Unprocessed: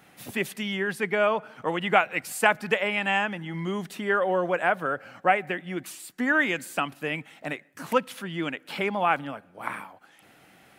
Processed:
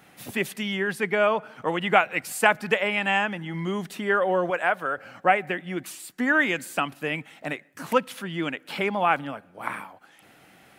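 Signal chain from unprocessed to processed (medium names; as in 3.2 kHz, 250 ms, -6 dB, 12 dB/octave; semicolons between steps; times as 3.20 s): 4.50–4.98 s: bass shelf 350 Hz -9.5 dB; trim +1.5 dB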